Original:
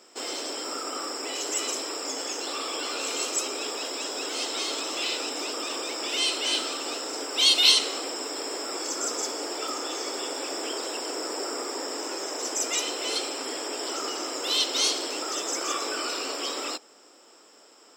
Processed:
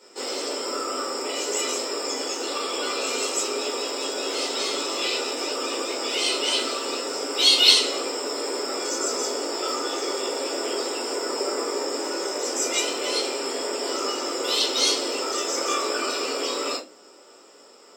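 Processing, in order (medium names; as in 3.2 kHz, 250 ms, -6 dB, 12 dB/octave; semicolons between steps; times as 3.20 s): reverberation RT60 0.30 s, pre-delay 7 ms, DRR -4.5 dB; trim -4 dB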